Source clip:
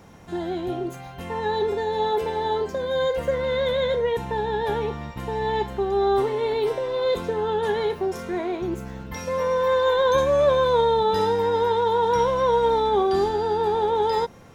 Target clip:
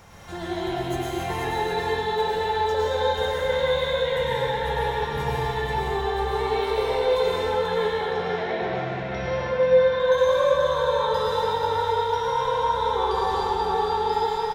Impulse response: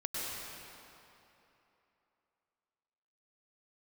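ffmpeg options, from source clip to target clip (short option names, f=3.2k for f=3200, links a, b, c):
-filter_complex "[0:a]equalizer=f=270:t=o:w=1.8:g=-12.5,acompressor=threshold=-34dB:ratio=4,asettb=1/sr,asplit=3[a][b][c];[a]atrim=end=7.424[d];[b]atrim=start=7.42:end=10,asetpts=PTS-STARTPTS,afade=t=in:d=0.004:c=qsin,afade=t=out:st=2.576:d=0.004:c=qsin,highpass=110,equalizer=f=190:t=q:w=4:g=5,equalizer=f=360:t=q:w=4:g=-9,equalizer=f=530:t=q:w=4:g=9,equalizer=f=1k:t=q:w=4:g=-5,equalizer=f=2.6k:t=q:w=4:g=-3,lowpass=f=3.9k:w=0.5412,lowpass=f=3.9k:w=1.3066[e];[c]atrim=start=9.996[f];[d][e]acrossfade=d=0.004:c1=hsin:c2=qsin[g];[g][f]acrossfade=d=0.004:c1=qsin:c2=hsin,aecho=1:1:485:0.501[h];[1:a]atrim=start_sample=2205[i];[h][i]afir=irnorm=-1:irlink=0,volume=6.5dB"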